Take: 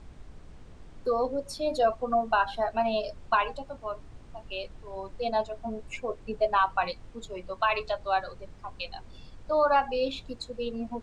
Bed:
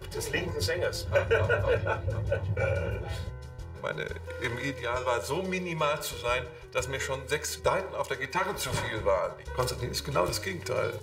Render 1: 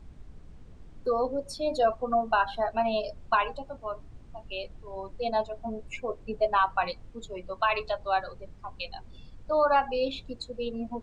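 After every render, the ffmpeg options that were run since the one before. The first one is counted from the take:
ffmpeg -i in.wav -af "afftdn=noise_reduction=6:noise_floor=-49" out.wav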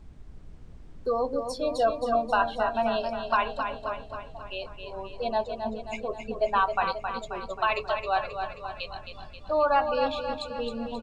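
ffmpeg -i in.wav -af "aecho=1:1:267|534|801|1068|1335|1602|1869:0.447|0.25|0.14|0.0784|0.0439|0.0246|0.0138" out.wav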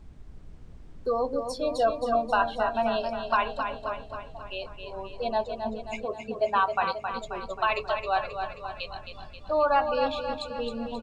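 ffmpeg -i in.wav -filter_complex "[0:a]asettb=1/sr,asplit=3[link_01][link_02][link_03];[link_01]atrim=end=6.054[link_04];[link_02]atrim=start=6.05:end=7.12,asetpts=PTS-STARTPTS,afade=type=in:duration=0.004:curve=qsin,afade=type=out:start_time=1.066:duration=0.004:curve=qsin,highpass=81[link_05];[link_03]atrim=start=7.116[link_06];[link_04][link_05]acrossfade=duration=0.004:curve1=hsin:curve2=qsin[link_07];[link_07][link_06]acrossfade=duration=0.004:curve1=qsin:curve2=hsin" out.wav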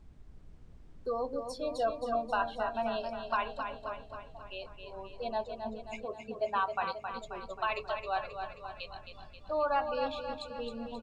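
ffmpeg -i in.wav -af "volume=-7dB" out.wav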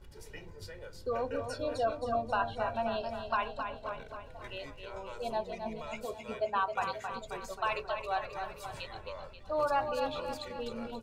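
ffmpeg -i in.wav -i bed.wav -filter_complex "[1:a]volume=-18dB[link_01];[0:a][link_01]amix=inputs=2:normalize=0" out.wav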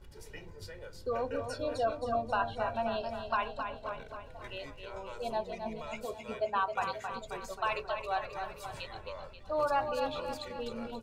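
ffmpeg -i in.wav -af anull out.wav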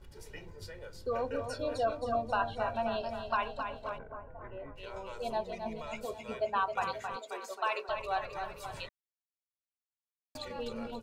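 ffmpeg -i in.wav -filter_complex "[0:a]asplit=3[link_01][link_02][link_03];[link_01]afade=type=out:start_time=3.97:duration=0.02[link_04];[link_02]lowpass=frequency=1600:width=0.5412,lowpass=frequency=1600:width=1.3066,afade=type=in:start_time=3.97:duration=0.02,afade=type=out:start_time=4.75:duration=0.02[link_05];[link_03]afade=type=in:start_time=4.75:duration=0.02[link_06];[link_04][link_05][link_06]amix=inputs=3:normalize=0,asettb=1/sr,asplit=3[link_07][link_08][link_09];[link_07]atrim=end=7.164[link_10];[link_08]atrim=start=7.16:end=7.89,asetpts=PTS-STARTPTS,afade=type=in:duration=0.004:curve=qsin,afade=type=out:start_time=0.726:duration=0.004:curve=qsin,highpass=frequency=310:width=0.5412,highpass=frequency=310:width=1.3066[link_11];[link_09]atrim=start=7.886[link_12];[link_10][link_11]acrossfade=duration=0.004:curve1=hsin:curve2=qsin[link_13];[link_13][link_12]acrossfade=duration=0.004:curve1=qsin:curve2=hsin,asplit=3[link_14][link_15][link_16];[link_14]atrim=end=8.89,asetpts=PTS-STARTPTS,afade=type=out:start_time=8.886:duration=0.004:curve=hsin[link_17];[link_15]atrim=start=8.89:end=10.35,asetpts=PTS-STARTPTS,volume=0[link_18];[link_16]atrim=start=10.35,asetpts=PTS-STARTPTS,afade=type=in:duration=0.004:curve=hsin[link_19];[link_17][link_18][link_19]concat=n=3:v=0:a=1" out.wav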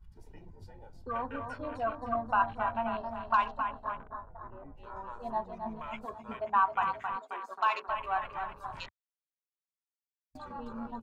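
ffmpeg -i in.wav -af "afwtdn=0.00501,equalizer=frequency=125:width_type=o:width=1:gain=-3,equalizer=frequency=250:width_type=o:width=1:gain=4,equalizer=frequency=500:width_type=o:width=1:gain=-12,equalizer=frequency=1000:width_type=o:width=1:gain=9" out.wav

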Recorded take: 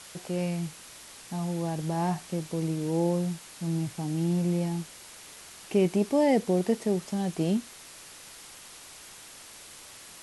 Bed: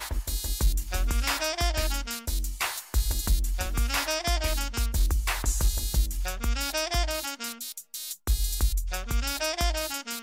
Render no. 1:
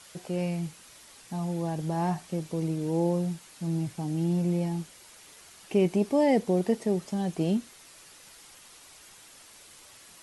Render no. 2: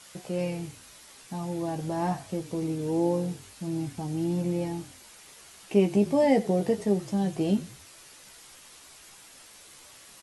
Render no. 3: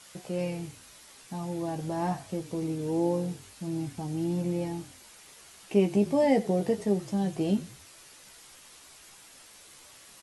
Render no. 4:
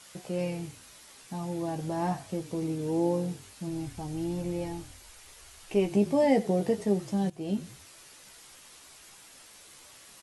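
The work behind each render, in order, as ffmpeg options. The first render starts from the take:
ffmpeg -i in.wav -af "afftdn=noise_reduction=6:noise_floor=-48" out.wav
ffmpeg -i in.wav -filter_complex "[0:a]asplit=2[link_01][link_02];[link_02]adelay=15,volume=-6dB[link_03];[link_01][link_03]amix=inputs=2:normalize=0,asplit=4[link_04][link_05][link_06][link_07];[link_05]adelay=93,afreqshift=-41,volume=-18dB[link_08];[link_06]adelay=186,afreqshift=-82,volume=-27.1dB[link_09];[link_07]adelay=279,afreqshift=-123,volume=-36.2dB[link_10];[link_04][link_08][link_09][link_10]amix=inputs=4:normalize=0" out.wav
ffmpeg -i in.wav -af "volume=-1.5dB" out.wav
ffmpeg -i in.wav -filter_complex "[0:a]asplit=3[link_01][link_02][link_03];[link_01]afade=type=out:start_time=3.68:duration=0.02[link_04];[link_02]asubboost=boost=10:cutoff=59,afade=type=in:start_time=3.68:duration=0.02,afade=type=out:start_time=5.9:duration=0.02[link_05];[link_03]afade=type=in:start_time=5.9:duration=0.02[link_06];[link_04][link_05][link_06]amix=inputs=3:normalize=0,asplit=2[link_07][link_08];[link_07]atrim=end=7.3,asetpts=PTS-STARTPTS,afade=type=out:start_time=7.296:duration=0.004:curve=hsin:silence=0.149624[link_09];[link_08]atrim=start=7.3,asetpts=PTS-STARTPTS,afade=type=in:duration=0.4:silence=0.149624[link_10];[link_09][link_10]concat=n=2:v=0:a=1" out.wav

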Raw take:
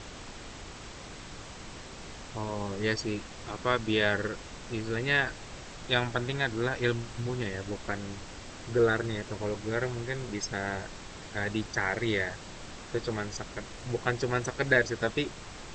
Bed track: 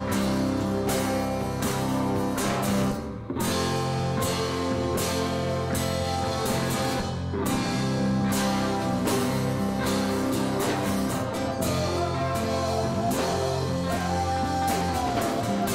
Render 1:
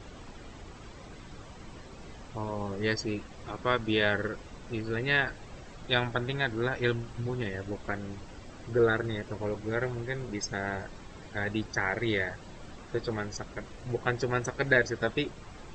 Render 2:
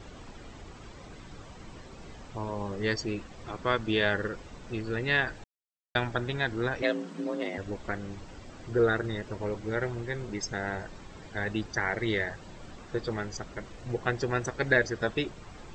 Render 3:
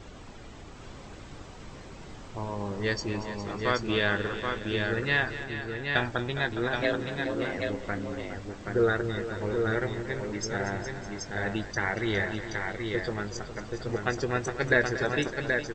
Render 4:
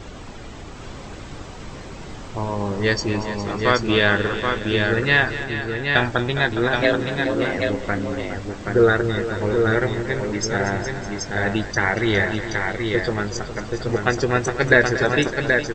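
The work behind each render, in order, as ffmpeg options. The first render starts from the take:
ffmpeg -i in.wav -af "afftdn=noise_reduction=10:noise_floor=-45" out.wav
ffmpeg -i in.wav -filter_complex "[0:a]asettb=1/sr,asplit=3[link_01][link_02][link_03];[link_01]atrim=end=6.824[link_04];[link_02]atrim=start=6.82:end=7.58,asetpts=PTS-STARTPTS,afade=type=in:duration=0.004:curve=qsin,afade=type=out:start_time=0.756:duration=0.004:curve=qsin,afreqshift=160[link_05];[link_03]atrim=start=7.576[link_06];[link_04][link_05]acrossfade=duration=0.004:curve1=hsin:curve2=qsin[link_07];[link_07][link_06]acrossfade=duration=0.004:curve1=qsin:curve2=hsin,asplit=3[link_08][link_09][link_10];[link_08]atrim=end=5.44,asetpts=PTS-STARTPTS,afade=type=out:start_time=5.436:duration=0.004:curve=hsin[link_11];[link_09]atrim=start=5.44:end=5.95,asetpts=PTS-STARTPTS,volume=0[link_12];[link_10]atrim=start=5.95,asetpts=PTS-STARTPTS,afade=type=in:duration=0.004:curve=hsin[link_13];[link_11][link_12][link_13]concat=n=3:v=0:a=1" out.wav
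ffmpeg -i in.wav -filter_complex "[0:a]asplit=2[link_01][link_02];[link_02]adelay=20,volume=-13dB[link_03];[link_01][link_03]amix=inputs=2:normalize=0,aecho=1:1:233|411|607|777:0.211|0.251|0.126|0.596" out.wav
ffmpeg -i in.wav -af "volume=9dB,alimiter=limit=-1dB:level=0:latency=1" out.wav

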